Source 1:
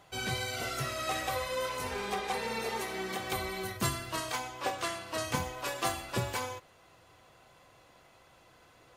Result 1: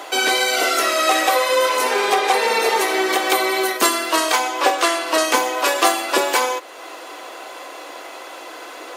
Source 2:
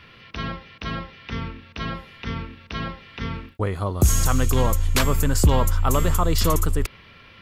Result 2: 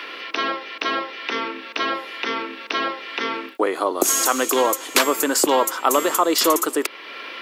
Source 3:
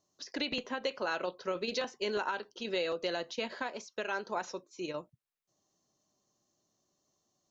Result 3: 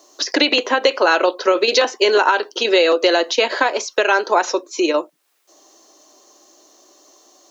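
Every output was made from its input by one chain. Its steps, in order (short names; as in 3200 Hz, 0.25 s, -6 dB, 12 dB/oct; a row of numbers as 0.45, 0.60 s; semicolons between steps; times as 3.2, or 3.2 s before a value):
elliptic high-pass 300 Hz, stop band 80 dB; compressor 1.5:1, threshold -56 dBFS; normalise peaks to -2 dBFS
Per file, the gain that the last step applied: +26.0, +19.0, +29.0 dB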